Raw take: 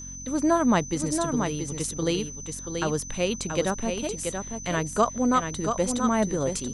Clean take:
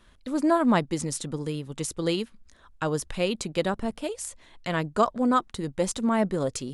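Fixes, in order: de-hum 45.2 Hz, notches 6; band-stop 6.1 kHz, Q 30; inverse comb 681 ms -6 dB

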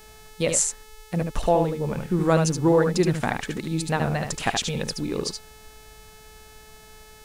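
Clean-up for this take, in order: de-click; de-hum 432.5 Hz, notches 36; inverse comb 74 ms -5.5 dB

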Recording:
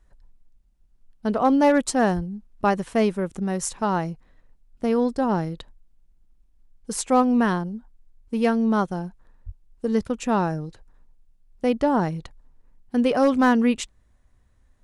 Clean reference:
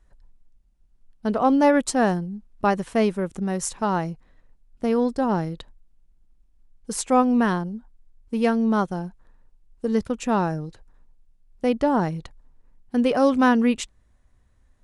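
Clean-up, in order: clip repair -10.5 dBFS; de-plosive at 2.15/9.45 s

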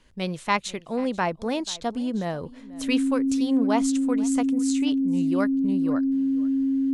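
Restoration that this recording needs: band-stop 270 Hz, Q 30; inverse comb 487 ms -20.5 dB

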